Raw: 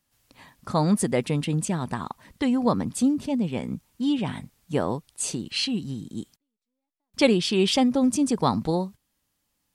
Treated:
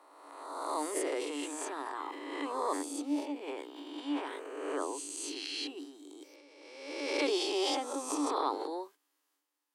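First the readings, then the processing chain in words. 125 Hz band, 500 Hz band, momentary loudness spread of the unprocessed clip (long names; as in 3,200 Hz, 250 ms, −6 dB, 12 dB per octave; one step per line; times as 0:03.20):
below −40 dB, −8.0 dB, 14 LU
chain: peak hold with a rise ahead of every peak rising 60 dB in 1.45 s
transient designer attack −8 dB, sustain +7 dB
Chebyshev high-pass with heavy ripple 280 Hz, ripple 6 dB
level −8.5 dB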